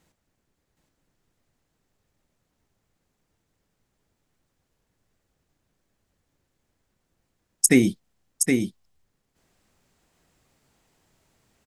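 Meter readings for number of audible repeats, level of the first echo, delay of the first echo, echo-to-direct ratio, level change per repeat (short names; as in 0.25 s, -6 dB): 1, -5.0 dB, 0.769 s, -5.0 dB, no steady repeat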